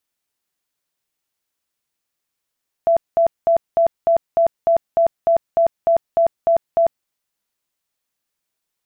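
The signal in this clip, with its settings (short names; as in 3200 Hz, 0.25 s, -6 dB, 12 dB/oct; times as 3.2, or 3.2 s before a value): tone bursts 670 Hz, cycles 65, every 0.30 s, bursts 14, -11 dBFS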